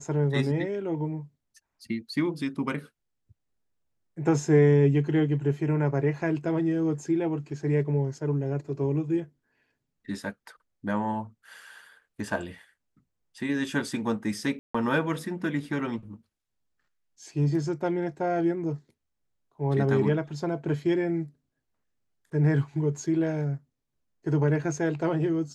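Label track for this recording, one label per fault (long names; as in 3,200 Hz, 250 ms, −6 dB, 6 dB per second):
14.590000	14.740000	drop-out 155 ms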